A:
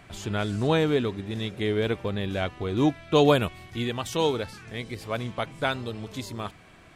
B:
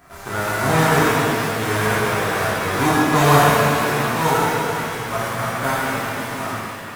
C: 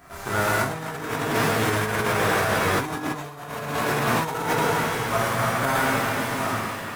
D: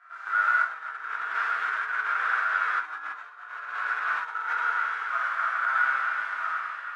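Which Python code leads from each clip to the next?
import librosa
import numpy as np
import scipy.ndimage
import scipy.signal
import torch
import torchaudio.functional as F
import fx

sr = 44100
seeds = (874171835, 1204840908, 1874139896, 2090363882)

y1 = fx.envelope_flatten(x, sr, power=0.3)
y1 = fx.high_shelf_res(y1, sr, hz=2100.0, db=-10.5, q=1.5)
y1 = fx.rev_shimmer(y1, sr, seeds[0], rt60_s=2.7, semitones=7, shimmer_db=-8, drr_db=-10.0)
y1 = y1 * 10.0 ** (-1.0 / 20.0)
y2 = fx.over_compress(y1, sr, threshold_db=-21.0, ratio=-0.5)
y2 = y2 * 10.0 ** (-2.5 / 20.0)
y3 = fx.ladder_bandpass(y2, sr, hz=1500.0, resonance_pct=75)
y3 = y3 * 10.0 ** (3.0 / 20.0)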